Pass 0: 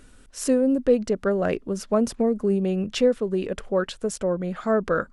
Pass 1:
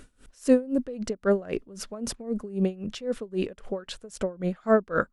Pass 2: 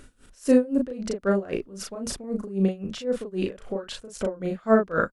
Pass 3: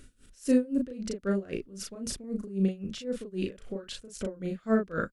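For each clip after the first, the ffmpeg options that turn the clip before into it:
-af "aeval=exprs='val(0)*pow(10,-23*(0.5-0.5*cos(2*PI*3.8*n/s))/20)':c=same,volume=3dB"
-filter_complex "[0:a]asplit=2[a][b];[b]adelay=36,volume=-2.5dB[c];[a][c]amix=inputs=2:normalize=0"
-af "equalizer=f=850:t=o:w=1.5:g=-11.5,volume=-2.5dB"

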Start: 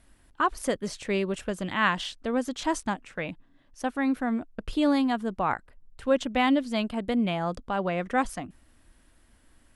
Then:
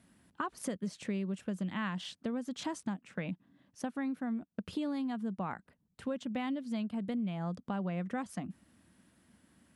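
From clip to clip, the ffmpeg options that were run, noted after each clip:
-af "highpass=f=78:w=0.5412,highpass=f=78:w=1.3066,equalizer=f=190:w=1.8:g=12.5,acompressor=threshold=-29dB:ratio=6,volume=-4.5dB"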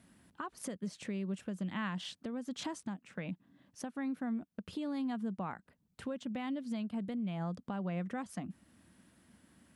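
-af "alimiter=level_in=6.5dB:limit=-24dB:level=0:latency=1:release=458,volume=-6.5dB,volume=1.5dB"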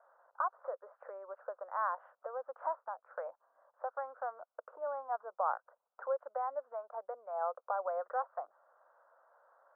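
-af "asuperpass=centerf=860:order=12:qfactor=0.92,volume=9.5dB"

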